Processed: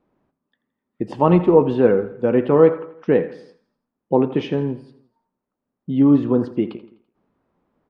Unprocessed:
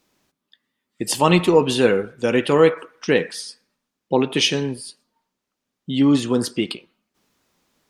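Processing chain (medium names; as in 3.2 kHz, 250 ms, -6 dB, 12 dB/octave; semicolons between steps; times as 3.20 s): low-pass 1 kHz 12 dB/octave; on a send: feedback delay 84 ms, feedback 49%, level -17 dB; on the sum: trim +2 dB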